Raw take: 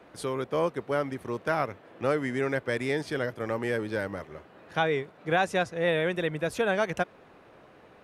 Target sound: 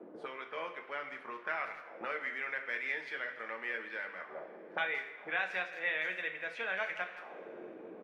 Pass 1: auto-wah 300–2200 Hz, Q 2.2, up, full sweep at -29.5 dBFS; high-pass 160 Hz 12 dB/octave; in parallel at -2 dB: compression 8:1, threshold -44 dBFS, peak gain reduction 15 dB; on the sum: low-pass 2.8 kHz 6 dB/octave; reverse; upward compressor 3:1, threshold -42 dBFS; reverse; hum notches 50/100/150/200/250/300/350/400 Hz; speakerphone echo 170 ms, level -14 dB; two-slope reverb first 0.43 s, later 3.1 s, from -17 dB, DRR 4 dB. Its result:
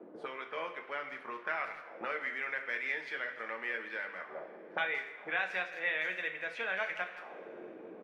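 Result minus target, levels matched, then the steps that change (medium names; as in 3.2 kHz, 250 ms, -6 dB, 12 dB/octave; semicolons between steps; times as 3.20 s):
compression: peak gain reduction -6.5 dB
change: compression 8:1, threshold -51.5 dBFS, peak gain reduction 21.5 dB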